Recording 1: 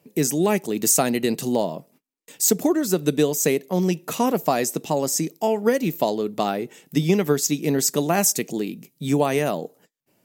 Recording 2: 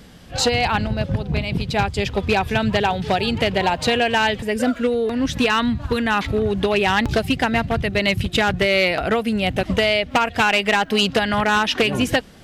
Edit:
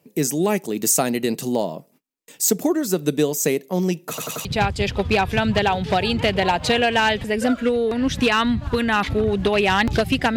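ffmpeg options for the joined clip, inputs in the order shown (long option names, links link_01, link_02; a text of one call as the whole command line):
ffmpeg -i cue0.wav -i cue1.wav -filter_complex "[0:a]apad=whole_dur=10.36,atrim=end=10.36,asplit=4[link_01][link_02][link_03][link_04];[link_01]atrim=end=4.182[link_05];[link_02]atrim=start=4.088:end=4.182[link_06];[link_03]atrim=start=4.088:end=4.182[link_07];[link_04]atrim=start=4.088:end=4.182[link_08];[1:a]atrim=start=1.628:end=7.54[link_09];[link_05][link_06]acrossfade=duration=0.004:curve1=hsin:curve2=hsin[link_10];[link_10][link_07]acrossfade=duration=0.004:curve1=hsin:curve2=hsin[link_11];[link_11][link_08]acrossfade=duration=0.004:curve1=hsin:curve2=hsin[link_12];[link_12][link_09]acrossfade=duration=0.004:curve1=hsin:curve2=hsin" out.wav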